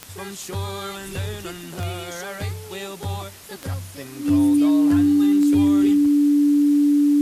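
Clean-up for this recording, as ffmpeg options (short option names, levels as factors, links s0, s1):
-af "adeclick=t=4,bandreject=f=290:w=30,afwtdn=0.0071"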